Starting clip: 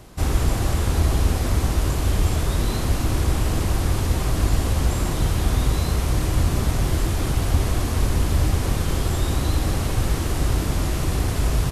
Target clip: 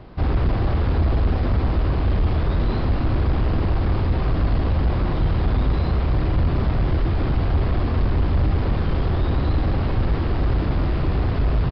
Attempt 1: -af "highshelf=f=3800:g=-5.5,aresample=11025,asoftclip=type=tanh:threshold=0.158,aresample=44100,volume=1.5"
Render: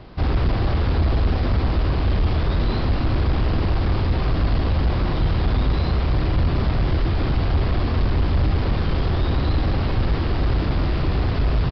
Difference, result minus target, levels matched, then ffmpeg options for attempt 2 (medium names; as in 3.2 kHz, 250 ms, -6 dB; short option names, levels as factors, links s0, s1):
8 kHz band +7.5 dB
-af "highshelf=f=3800:g=-17,aresample=11025,asoftclip=type=tanh:threshold=0.158,aresample=44100,volume=1.5"